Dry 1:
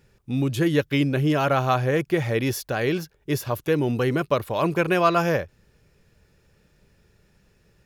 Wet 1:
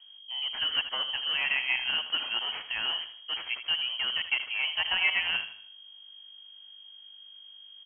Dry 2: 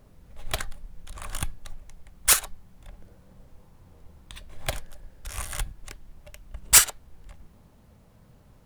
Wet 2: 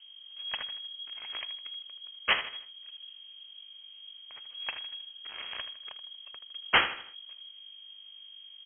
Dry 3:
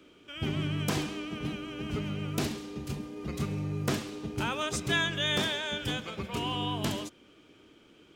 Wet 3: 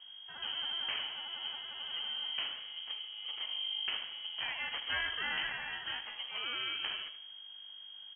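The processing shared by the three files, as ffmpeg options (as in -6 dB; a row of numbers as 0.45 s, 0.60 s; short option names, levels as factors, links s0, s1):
-filter_complex "[0:a]acrossover=split=280|2600[s0][s1][s2];[s0]alimiter=level_in=1.88:limit=0.0631:level=0:latency=1,volume=0.531[s3];[s3][s1][s2]amix=inputs=3:normalize=0,aeval=exprs='val(0)+0.00562*(sin(2*PI*50*n/s)+sin(2*PI*2*50*n/s)/2+sin(2*PI*3*50*n/s)/3+sin(2*PI*4*50*n/s)/4+sin(2*PI*5*50*n/s)/5)':c=same,acrusher=samples=9:mix=1:aa=0.000001,aecho=1:1:79|158|237|316:0.266|0.109|0.0447|0.0183,lowpass=f=2800:t=q:w=0.5098,lowpass=f=2800:t=q:w=0.6013,lowpass=f=2800:t=q:w=0.9,lowpass=f=2800:t=q:w=2.563,afreqshift=-3300,volume=0.473"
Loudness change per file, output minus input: -5.0 LU, -11.0 LU, -4.0 LU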